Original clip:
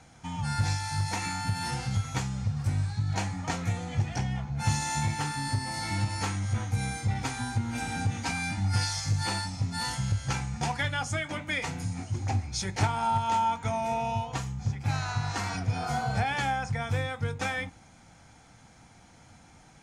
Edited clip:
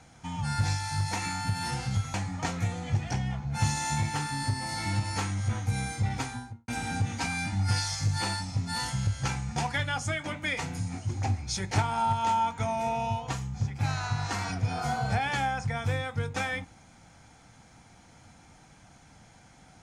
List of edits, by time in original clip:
2.14–3.19 s: delete
7.21–7.73 s: studio fade out

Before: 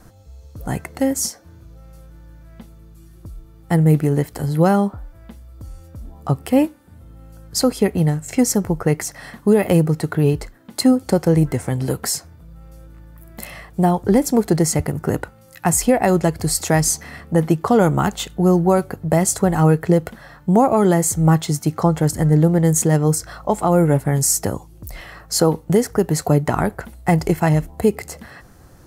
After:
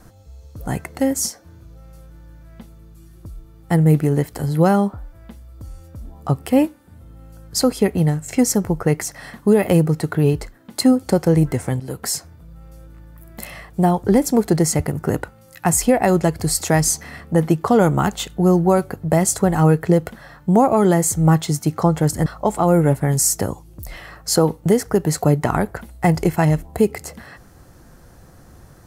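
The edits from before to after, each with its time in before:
11.80–12.16 s: fade in, from -14 dB
22.26–23.30 s: delete

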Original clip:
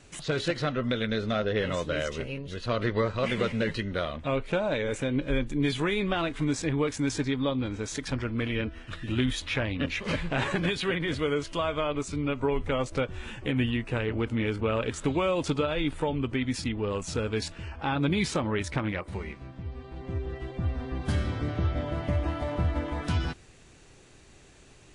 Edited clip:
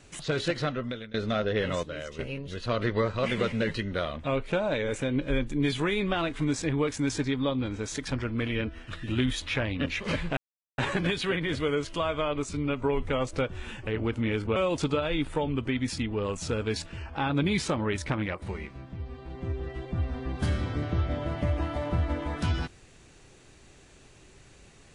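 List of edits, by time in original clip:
0.63–1.14 s: fade out, to -23.5 dB
1.83–2.19 s: gain -7.5 dB
10.37 s: insert silence 0.41 s
13.46–14.01 s: delete
14.70–15.22 s: delete

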